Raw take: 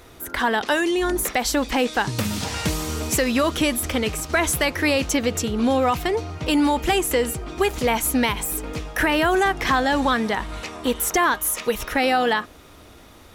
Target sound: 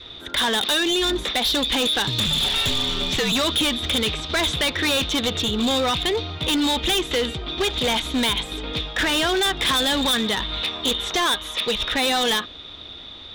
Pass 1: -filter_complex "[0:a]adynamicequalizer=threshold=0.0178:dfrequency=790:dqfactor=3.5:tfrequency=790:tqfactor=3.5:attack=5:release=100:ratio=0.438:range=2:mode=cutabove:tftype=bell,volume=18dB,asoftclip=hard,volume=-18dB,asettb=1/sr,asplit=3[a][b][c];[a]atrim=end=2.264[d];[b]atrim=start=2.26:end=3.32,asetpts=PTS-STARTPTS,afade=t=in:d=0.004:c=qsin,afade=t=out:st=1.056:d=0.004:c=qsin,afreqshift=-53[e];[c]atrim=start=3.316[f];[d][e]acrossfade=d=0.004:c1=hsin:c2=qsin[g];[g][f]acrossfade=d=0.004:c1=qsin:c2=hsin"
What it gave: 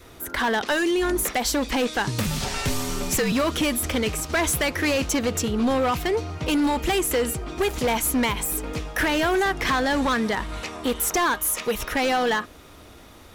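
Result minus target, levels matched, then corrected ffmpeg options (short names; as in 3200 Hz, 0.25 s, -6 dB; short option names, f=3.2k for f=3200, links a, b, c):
4000 Hz band -9.0 dB
-filter_complex "[0:a]adynamicequalizer=threshold=0.0178:dfrequency=790:dqfactor=3.5:tfrequency=790:tqfactor=3.5:attack=5:release=100:ratio=0.438:range=2:mode=cutabove:tftype=bell,lowpass=f=3.6k:t=q:w=16,volume=18dB,asoftclip=hard,volume=-18dB,asettb=1/sr,asplit=3[a][b][c];[a]atrim=end=2.264[d];[b]atrim=start=2.26:end=3.32,asetpts=PTS-STARTPTS,afade=t=in:d=0.004:c=qsin,afade=t=out:st=1.056:d=0.004:c=qsin,afreqshift=-53[e];[c]atrim=start=3.316[f];[d][e]acrossfade=d=0.004:c1=hsin:c2=qsin[g];[g][f]acrossfade=d=0.004:c1=qsin:c2=hsin"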